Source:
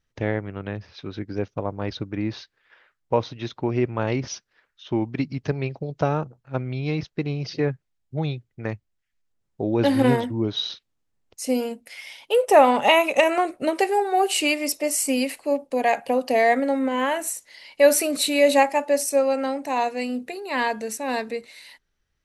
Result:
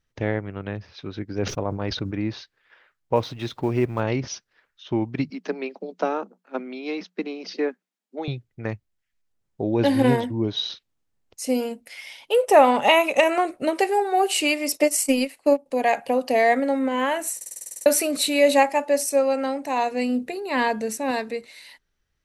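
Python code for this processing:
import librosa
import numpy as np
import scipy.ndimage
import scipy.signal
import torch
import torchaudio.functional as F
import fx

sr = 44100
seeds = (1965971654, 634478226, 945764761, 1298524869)

y = fx.sustainer(x, sr, db_per_s=58.0, at=(1.38, 2.19))
y = fx.law_mismatch(y, sr, coded='mu', at=(3.15, 4.0), fade=0.02)
y = fx.cheby1_highpass(y, sr, hz=180.0, order=10, at=(5.3, 8.28))
y = fx.notch(y, sr, hz=1300.0, q=7.2, at=(9.62, 10.69))
y = fx.transient(y, sr, attack_db=8, sustain_db=-11, at=(14.74, 15.66))
y = fx.low_shelf(y, sr, hz=450.0, db=6.0, at=(19.91, 21.11))
y = fx.edit(y, sr, fx.stutter_over(start_s=17.36, slice_s=0.05, count=10), tone=tone)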